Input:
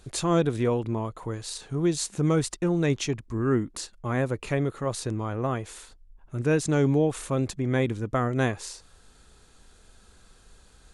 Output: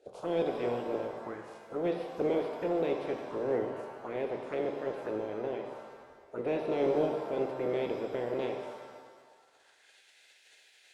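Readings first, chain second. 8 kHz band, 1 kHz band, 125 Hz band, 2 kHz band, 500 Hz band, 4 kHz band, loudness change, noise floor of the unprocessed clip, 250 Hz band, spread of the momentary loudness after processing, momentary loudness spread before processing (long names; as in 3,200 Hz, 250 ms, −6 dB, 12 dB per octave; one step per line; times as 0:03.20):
below −25 dB, −5.0 dB, −20.5 dB, −10.0 dB, −2.5 dB, −12.5 dB, −7.0 dB, −56 dBFS, −10.0 dB, 13 LU, 11 LU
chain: ceiling on every frequency bin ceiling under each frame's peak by 26 dB
band-pass filter sweep 460 Hz → 2,100 Hz, 0:08.95–0:09.95
phaser swept by the level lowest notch 180 Hz, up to 1,300 Hz, full sweep at −33 dBFS
in parallel at −7 dB: gain into a clipping stage and back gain 35 dB
on the sum: reverb with rising layers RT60 1.5 s, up +7 semitones, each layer −8 dB, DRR 3.5 dB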